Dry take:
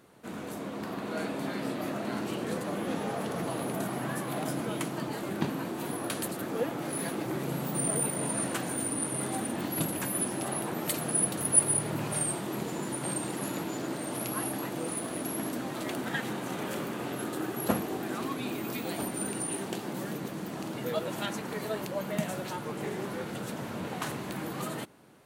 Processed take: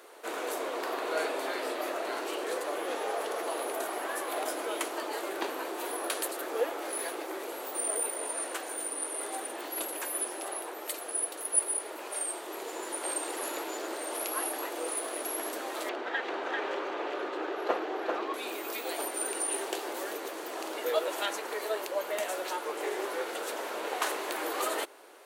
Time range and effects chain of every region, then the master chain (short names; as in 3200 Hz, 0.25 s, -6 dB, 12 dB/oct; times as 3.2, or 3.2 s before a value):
15.89–18.34 air absorption 200 m + echo 0.392 s -3.5 dB
whole clip: steep high-pass 370 Hz 36 dB/oct; vocal rider 2 s